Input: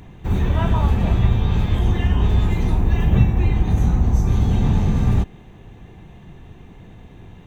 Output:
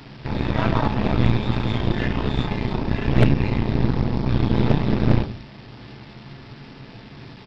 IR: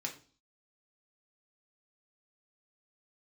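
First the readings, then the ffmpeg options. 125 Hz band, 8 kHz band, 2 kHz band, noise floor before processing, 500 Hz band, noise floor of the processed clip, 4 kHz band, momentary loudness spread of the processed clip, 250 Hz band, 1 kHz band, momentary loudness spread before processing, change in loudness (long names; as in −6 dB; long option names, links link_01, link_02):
−3.5 dB, can't be measured, +4.0 dB, −43 dBFS, +4.0 dB, −43 dBFS, +4.0 dB, 21 LU, +1.5 dB, +2.0 dB, 3 LU, −2.5 dB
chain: -filter_complex "[0:a]bandreject=frequency=50:width_type=h:width=6,bandreject=frequency=100:width_type=h:width=6,bandreject=frequency=150:width_type=h:width=6,bandreject=frequency=200:width_type=h:width=6,bandreject=frequency=250:width_type=h:width=6,bandreject=frequency=300:width_type=h:width=6,bandreject=frequency=350:width_type=h:width=6,asplit=2[link_01][link_02];[link_02]acompressor=threshold=-28dB:ratio=5,volume=-2dB[link_03];[link_01][link_03]amix=inputs=2:normalize=0,aecho=1:1:68|136|204|272:0.106|0.053|0.0265|0.0132[link_04];[1:a]atrim=start_sample=2205,afade=type=out:start_time=0.26:duration=0.01,atrim=end_sample=11907[link_05];[link_04][link_05]afir=irnorm=-1:irlink=0,aresample=11025,acrusher=bits=6:mix=0:aa=0.000001,aresample=44100,aeval=exprs='0.596*(cos(1*acos(clip(val(0)/0.596,-1,1)))-cos(1*PI/2))+0.266*(cos(6*acos(clip(val(0)/0.596,-1,1)))-cos(6*PI/2))+0.0944*(cos(8*acos(clip(val(0)/0.596,-1,1)))-cos(8*PI/2))':channel_layout=same,volume=-2.5dB"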